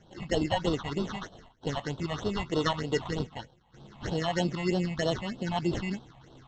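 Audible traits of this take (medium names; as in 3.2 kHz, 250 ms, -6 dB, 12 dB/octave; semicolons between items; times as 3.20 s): aliases and images of a low sample rate 2.4 kHz, jitter 0%; phasing stages 6, 3.2 Hz, lowest notch 380–2000 Hz; Vorbis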